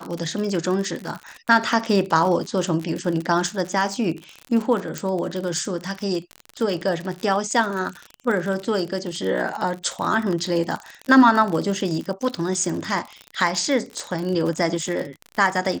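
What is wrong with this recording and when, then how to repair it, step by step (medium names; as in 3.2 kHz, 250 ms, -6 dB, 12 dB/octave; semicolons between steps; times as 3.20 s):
crackle 50 per s -26 dBFS
4.98 s: pop -11 dBFS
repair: de-click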